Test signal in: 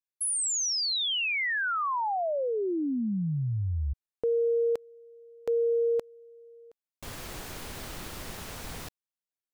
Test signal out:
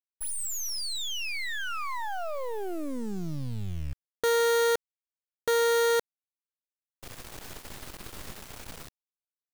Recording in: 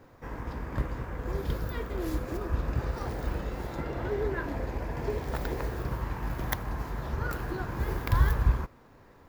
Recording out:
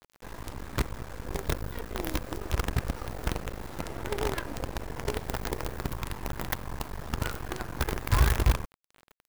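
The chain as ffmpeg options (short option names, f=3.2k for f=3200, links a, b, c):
-af "acrusher=bits=5:dc=4:mix=0:aa=0.000001"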